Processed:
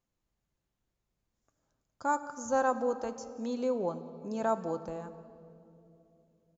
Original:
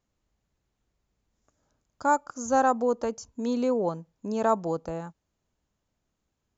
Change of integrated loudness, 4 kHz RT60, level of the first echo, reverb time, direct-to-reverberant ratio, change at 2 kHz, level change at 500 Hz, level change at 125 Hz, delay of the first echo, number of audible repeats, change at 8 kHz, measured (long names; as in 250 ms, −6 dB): −6.0 dB, 2.0 s, −22.0 dB, 2.9 s, 8.5 dB, −5.0 dB, −5.0 dB, −6.5 dB, 180 ms, 1, can't be measured